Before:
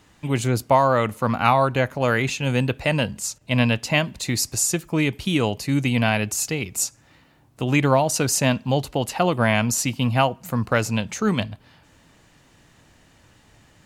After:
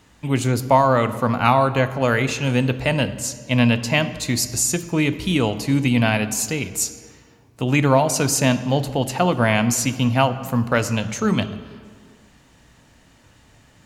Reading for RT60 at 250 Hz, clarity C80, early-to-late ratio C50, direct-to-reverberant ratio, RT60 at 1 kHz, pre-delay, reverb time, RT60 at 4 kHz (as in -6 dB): n/a, 14.5 dB, 13.5 dB, 11.0 dB, 1.8 s, 3 ms, 1.8 s, 1.3 s